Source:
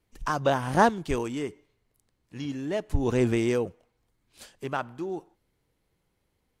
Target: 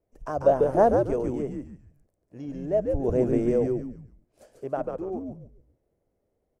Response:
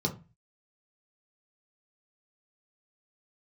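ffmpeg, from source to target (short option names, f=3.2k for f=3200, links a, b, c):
-filter_complex "[0:a]firequalizer=gain_entry='entry(200,0);entry(630,13);entry(890,-3);entry(3700,-18);entry(5500,-9)':delay=0.05:min_phase=1,asplit=5[a][b][c][d][e];[b]adelay=142,afreqshift=-110,volume=-3.5dB[f];[c]adelay=284,afreqshift=-220,volume=-12.9dB[g];[d]adelay=426,afreqshift=-330,volume=-22.2dB[h];[e]adelay=568,afreqshift=-440,volume=-31.6dB[i];[a][f][g][h][i]amix=inputs=5:normalize=0,volume=-5dB"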